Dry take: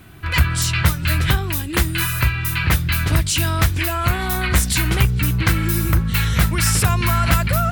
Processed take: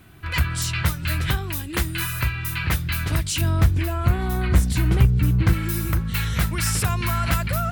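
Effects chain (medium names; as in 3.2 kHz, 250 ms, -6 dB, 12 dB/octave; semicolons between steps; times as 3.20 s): 3.41–5.53 s: tilt shelf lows +6.5 dB, about 840 Hz; trim -5.5 dB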